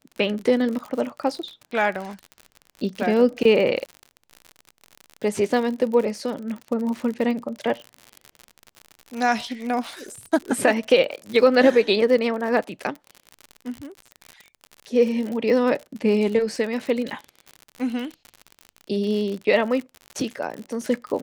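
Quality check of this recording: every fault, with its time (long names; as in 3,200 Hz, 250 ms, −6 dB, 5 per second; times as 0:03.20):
surface crackle 59 per second −29 dBFS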